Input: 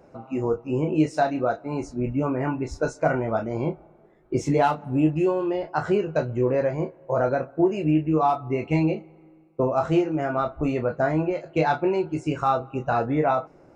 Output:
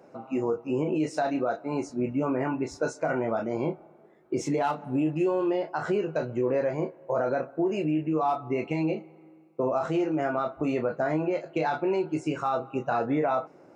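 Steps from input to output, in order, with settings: peak limiter -18 dBFS, peak gain reduction 9 dB; high-pass 180 Hz 12 dB/octave

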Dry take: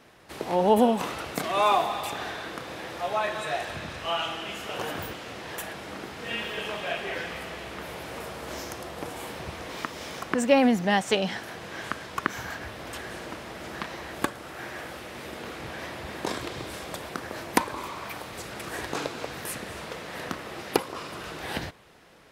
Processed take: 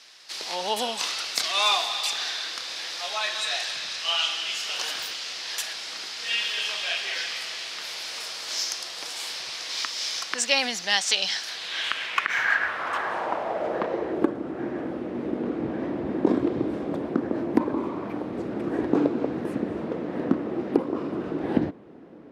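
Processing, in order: band-pass sweep 4.9 kHz -> 280 Hz, 11.43–14.44 s; loudness maximiser +23 dB; trim -5.5 dB

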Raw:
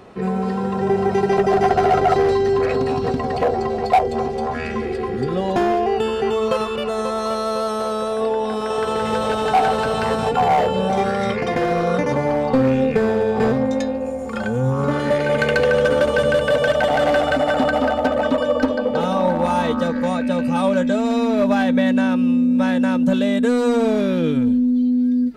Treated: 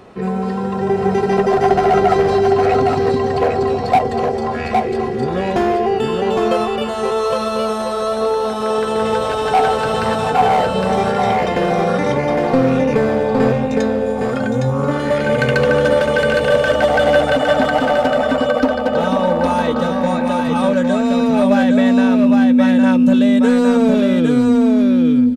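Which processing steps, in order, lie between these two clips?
delay 811 ms -3.5 dB; trim +1.5 dB

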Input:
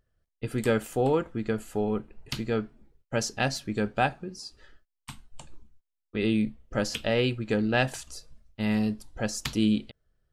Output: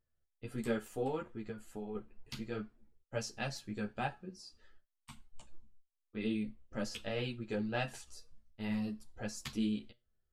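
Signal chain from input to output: 1.46–1.95 s: compression 3:1, threshold -30 dBFS, peak gain reduction 6 dB; feedback comb 120 Hz, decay 0.26 s, harmonics all, mix 50%; three-phase chorus; trim -4 dB

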